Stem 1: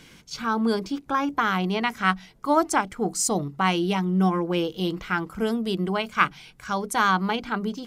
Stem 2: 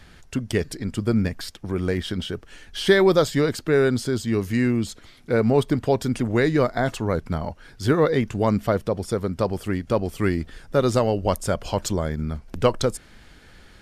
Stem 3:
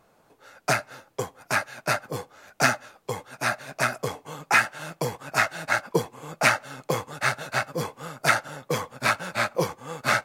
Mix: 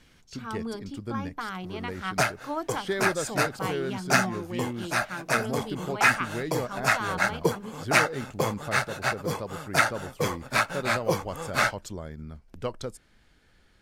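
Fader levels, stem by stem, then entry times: −11.5, −13.0, −1.0 decibels; 0.00, 0.00, 1.50 seconds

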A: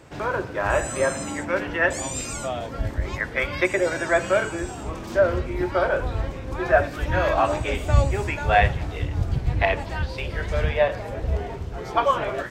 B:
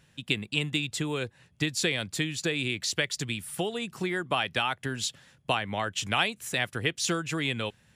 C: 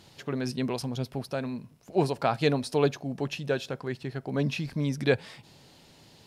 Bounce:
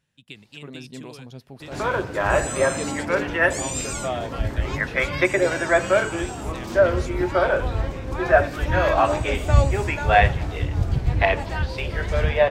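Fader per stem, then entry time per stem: +2.0, −13.5, −8.5 decibels; 1.60, 0.00, 0.35 seconds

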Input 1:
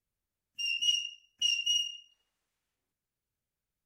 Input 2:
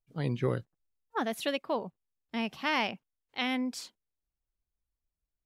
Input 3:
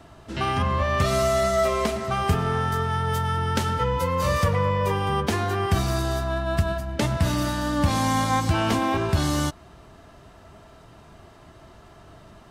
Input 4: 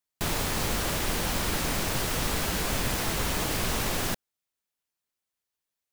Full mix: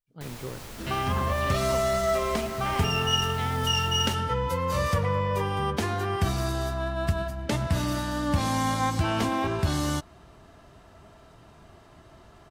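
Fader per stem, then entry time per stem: +1.5, −8.0, −3.5, −14.0 decibels; 2.25, 0.00, 0.50, 0.00 seconds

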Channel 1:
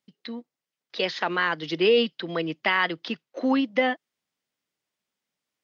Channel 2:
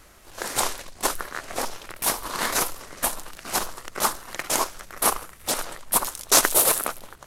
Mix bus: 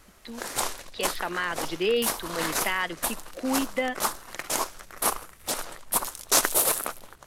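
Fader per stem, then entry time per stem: −5.0, −4.0 decibels; 0.00, 0.00 seconds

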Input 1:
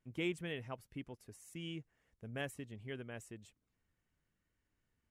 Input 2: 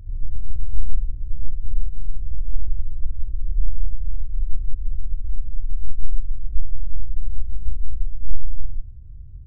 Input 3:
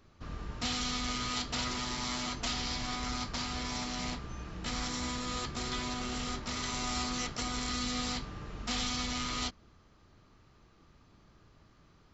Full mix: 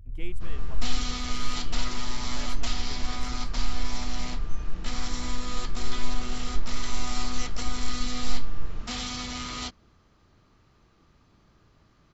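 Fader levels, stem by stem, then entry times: −4.5, −8.0, +0.5 decibels; 0.00, 0.00, 0.20 seconds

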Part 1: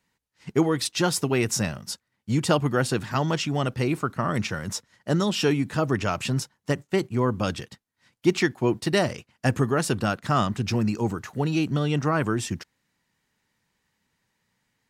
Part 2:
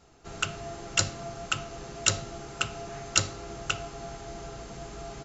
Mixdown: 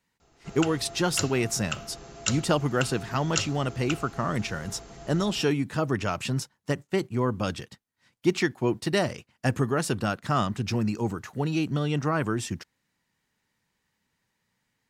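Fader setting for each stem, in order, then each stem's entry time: −2.5, −4.0 decibels; 0.00, 0.20 seconds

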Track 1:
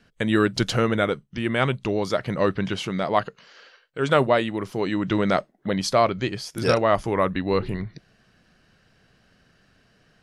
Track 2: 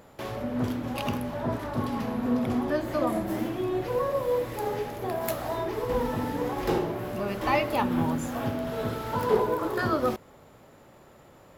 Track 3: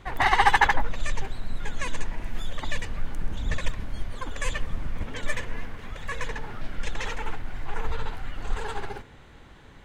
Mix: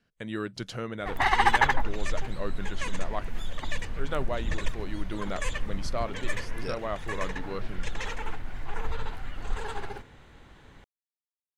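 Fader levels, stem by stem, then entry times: −13.5 dB, muted, −2.5 dB; 0.00 s, muted, 1.00 s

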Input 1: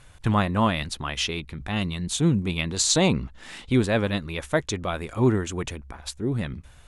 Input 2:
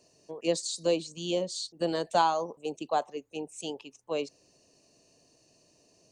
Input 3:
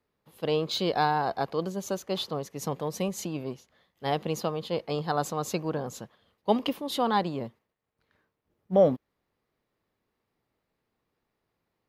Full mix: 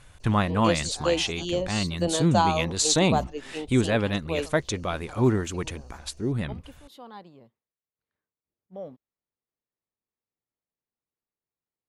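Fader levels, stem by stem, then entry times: −1.0, +2.0, −18.5 decibels; 0.00, 0.20, 0.00 seconds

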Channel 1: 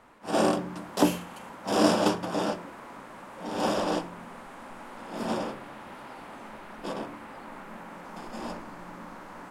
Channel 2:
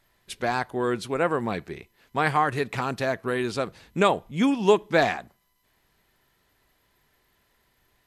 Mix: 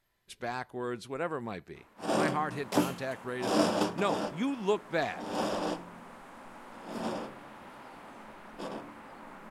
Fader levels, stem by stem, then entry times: −5.0, −10.0 decibels; 1.75, 0.00 seconds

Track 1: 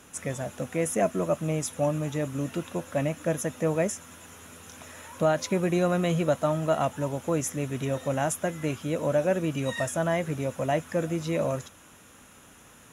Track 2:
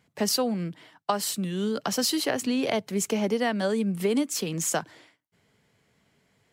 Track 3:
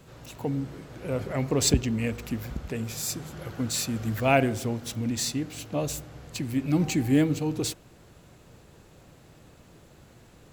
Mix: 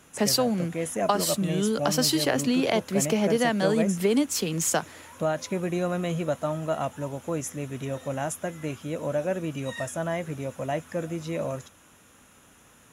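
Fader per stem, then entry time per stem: −3.0 dB, +2.0 dB, muted; 0.00 s, 0.00 s, muted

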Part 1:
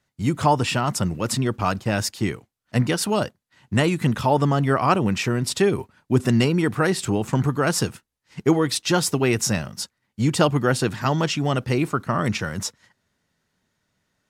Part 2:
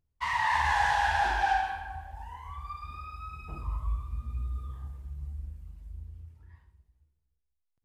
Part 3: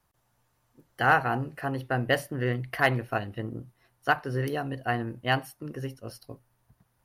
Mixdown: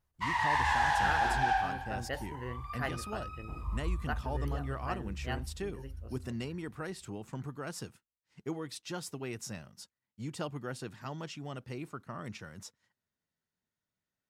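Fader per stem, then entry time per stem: −19.5, −2.5, −13.5 decibels; 0.00, 0.00, 0.00 seconds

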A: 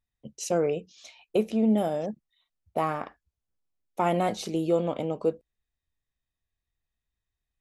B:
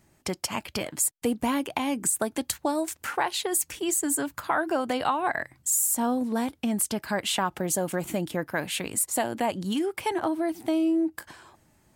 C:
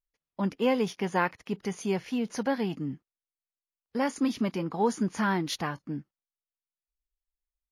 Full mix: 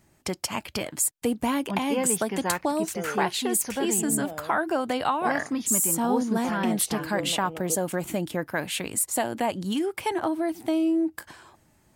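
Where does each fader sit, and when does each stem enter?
−10.0, +0.5, −2.0 decibels; 2.45, 0.00, 1.30 seconds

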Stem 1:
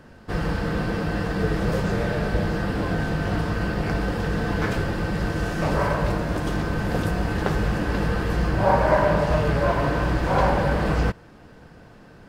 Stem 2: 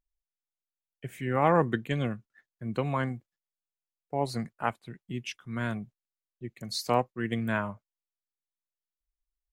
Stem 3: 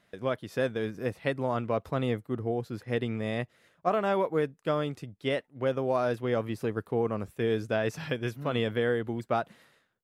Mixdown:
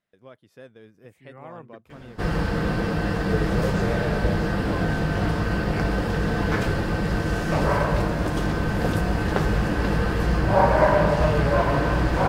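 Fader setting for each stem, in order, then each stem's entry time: +1.0, −19.0, −16.5 decibels; 1.90, 0.00, 0.00 seconds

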